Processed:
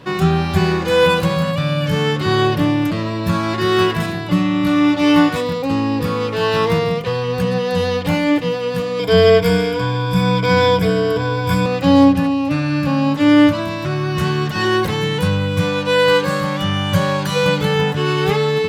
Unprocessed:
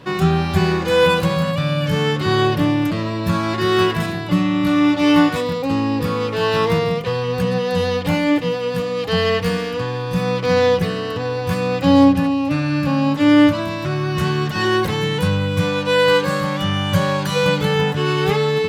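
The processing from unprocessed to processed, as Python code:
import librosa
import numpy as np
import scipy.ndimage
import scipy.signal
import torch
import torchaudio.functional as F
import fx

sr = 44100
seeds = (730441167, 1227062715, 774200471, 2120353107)

y = fx.ripple_eq(x, sr, per_octave=1.7, db=16, at=(8.99, 11.66))
y = y * librosa.db_to_amplitude(1.0)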